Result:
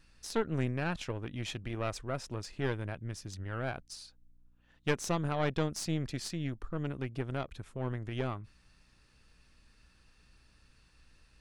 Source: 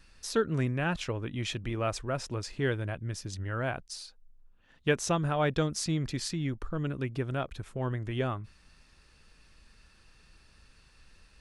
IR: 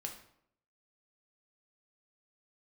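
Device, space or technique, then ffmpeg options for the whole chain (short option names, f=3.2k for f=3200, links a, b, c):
valve amplifier with mains hum: -af "aeval=exprs='(tanh(11.2*val(0)+0.8)-tanh(0.8))/11.2':c=same,aeval=exprs='val(0)+0.000355*(sin(2*PI*60*n/s)+sin(2*PI*2*60*n/s)/2+sin(2*PI*3*60*n/s)/3+sin(2*PI*4*60*n/s)/4+sin(2*PI*5*60*n/s)/5)':c=same"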